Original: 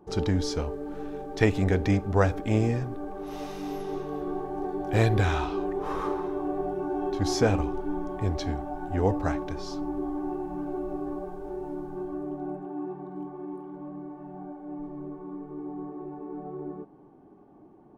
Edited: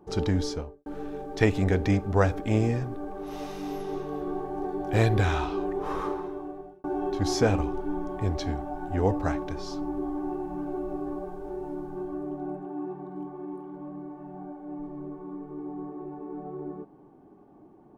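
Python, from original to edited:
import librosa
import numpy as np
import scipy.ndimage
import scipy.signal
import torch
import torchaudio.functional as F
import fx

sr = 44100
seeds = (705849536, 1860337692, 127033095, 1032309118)

y = fx.studio_fade_out(x, sr, start_s=0.4, length_s=0.46)
y = fx.edit(y, sr, fx.fade_out_span(start_s=5.97, length_s=0.87), tone=tone)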